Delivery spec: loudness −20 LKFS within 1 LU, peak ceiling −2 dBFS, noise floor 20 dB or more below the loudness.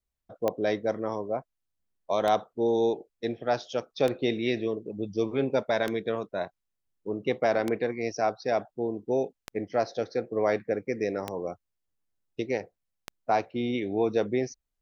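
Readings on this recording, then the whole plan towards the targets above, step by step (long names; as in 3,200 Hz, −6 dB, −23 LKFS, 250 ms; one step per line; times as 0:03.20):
number of clicks 8; integrated loudness −29.5 LKFS; sample peak −12.0 dBFS; target loudness −20.0 LKFS
→ click removal
level +9.5 dB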